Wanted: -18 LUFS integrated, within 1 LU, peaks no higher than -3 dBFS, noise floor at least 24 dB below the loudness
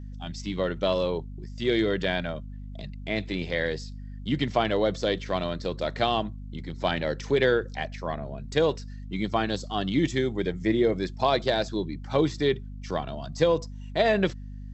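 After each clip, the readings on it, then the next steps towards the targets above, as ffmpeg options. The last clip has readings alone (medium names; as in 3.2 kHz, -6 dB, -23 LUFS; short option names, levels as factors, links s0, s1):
hum 50 Hz; highest harmonic 250 Hz; hum level -36 dBFS; loudness -27.5 LUFS; peak level -8.5 dBFS; loudness target -18.0 LUFS
-> -af "bandreject=f=50:t=h:w=4,bandreject=f=100:t=h:w=4,bandreject=f=150:t=h:w=4,bandreject=f=200:t=h:w=4,bandreject=f=250:t=h:w=4"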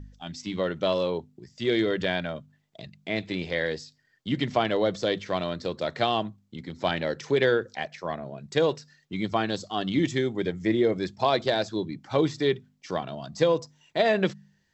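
hum not found; loudness -27.5 LUFS; peak level -8.5 dBFS; loudness target -18.0 LUFS
-> -af "volume=2.99,alimiter=limit=0.708:level=0:latency=1"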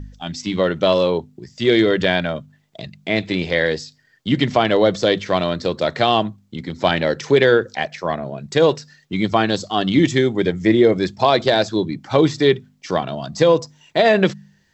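loudness -18.5 LUFS; peak level -3.0 dBFS; noise floor -59 dBFS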